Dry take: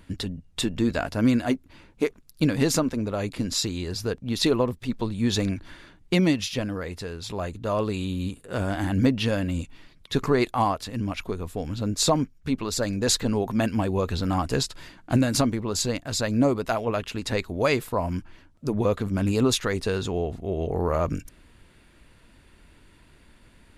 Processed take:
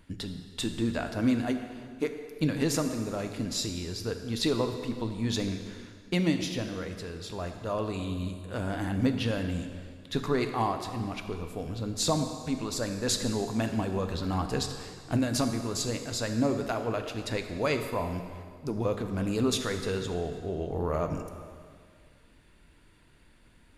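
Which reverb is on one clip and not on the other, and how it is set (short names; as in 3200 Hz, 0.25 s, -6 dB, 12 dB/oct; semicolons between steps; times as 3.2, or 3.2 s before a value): plate-style reverb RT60 2 s, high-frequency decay 0.9×, DRR 6 dB; gain -6 dB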